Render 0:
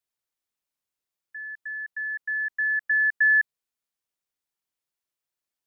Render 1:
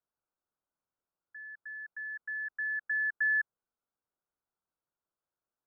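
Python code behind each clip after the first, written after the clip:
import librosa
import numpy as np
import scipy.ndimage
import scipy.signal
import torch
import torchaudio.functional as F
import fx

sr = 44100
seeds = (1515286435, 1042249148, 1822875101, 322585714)

y = scipy.signal.sosfilt(scipy.signal.ellip(4, 1.0, 40, 1500.0, 'lowpass', fs=sr, output='sos'), x)
y = F.gain(torch.from_numpy(y), 2.5).numpy()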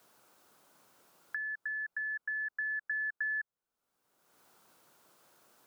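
y = fx.band_squash(x, sr, depth_pct=100)
y = F.gain(torch.from_numpy(y), -1.5).numpy()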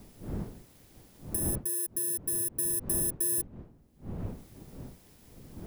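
y = fx.bit_reversed(x, sr, seeds[0], block=32)
y = fx.dmg_wind(y, sr, seeds[1], corner_hz=220.0, level_db=-47.0)
y = F.gain(torch.from_numpy(y), 5.0).numpy()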